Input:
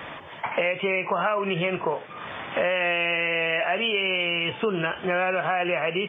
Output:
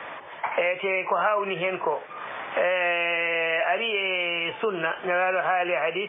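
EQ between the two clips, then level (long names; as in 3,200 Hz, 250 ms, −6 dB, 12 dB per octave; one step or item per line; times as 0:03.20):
high-pass filter 86 Hz
three-way crossover with the lows and the highs turned down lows −12 dB, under 380 Hz, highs −21 dB, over 3,000 Hz
+2.0 dB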